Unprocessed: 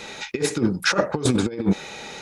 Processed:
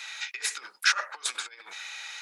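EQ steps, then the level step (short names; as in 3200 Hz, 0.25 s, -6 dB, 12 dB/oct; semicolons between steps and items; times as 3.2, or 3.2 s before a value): ladder high-pass 1100 Hz, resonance 20%; +3.0 dB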